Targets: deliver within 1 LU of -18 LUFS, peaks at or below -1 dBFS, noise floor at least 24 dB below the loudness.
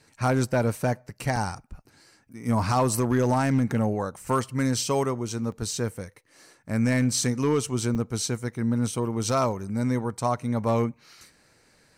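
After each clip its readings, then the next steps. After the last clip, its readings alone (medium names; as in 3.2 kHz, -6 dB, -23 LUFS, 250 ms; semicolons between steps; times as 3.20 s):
clipped samples 0.6%; clipping level -15.5 dBFS; dropouts 3; longest dropout 2.1 ms; loudness -26.0 LUFS; peak level -15.5 dBFS; loudness target -18.0 LUFS
-> clip repair -15.5 dBFS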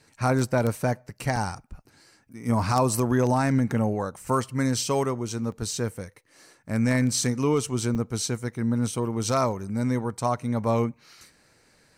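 clipped samples 0.0%; dropouts 3; longest dropout 2.1 ms
-> interpolate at 1.36/5.52/7.95 s, 2.1 ms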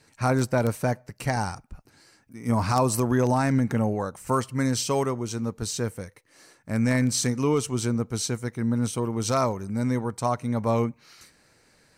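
dropouts 0; loudness -26.0 LUFS; peak level -6.5 dBFS; loudness target -18.0 LUFS
-> trim +8 dB; peak limiter -1 dBFS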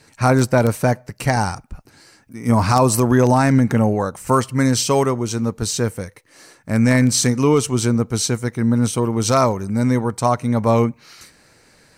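loudness -18.0 LUFS; peak level -1.0 dBFS; noise floor -53 dBFS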